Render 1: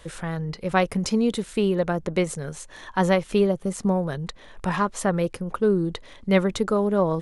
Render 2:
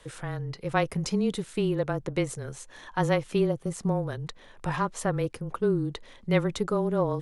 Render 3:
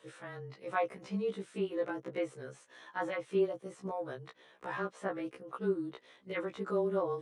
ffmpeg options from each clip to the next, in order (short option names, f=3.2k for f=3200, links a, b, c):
-af "afreqshift=-21,volume=-4.5dB"
-filter_complex "[0:a]highpass=260,equalizer=f=890:t=q:w=4:g=-3,equalizer=f=4.7k:t=q:w=4:g=-4,equalizer=f=7k:t=q:w=4:g=-5,lowpass=f=9.2k:w=0.5412,lowpass=f=9.2k:w=1.3066,acrossover=split=2600[a][b];[b]acompressor=threshold=-51dB:ratio=4:attack=1:release=60[c];[a][c]amix=inputs=2:normalize=0,afftfilt=real='re*1.73*eq(mod(b,3),0)':imag='im*1.73*eq(mod(b,3),0)':win_size=2048:overlap=0.75,volume=-3.5dB"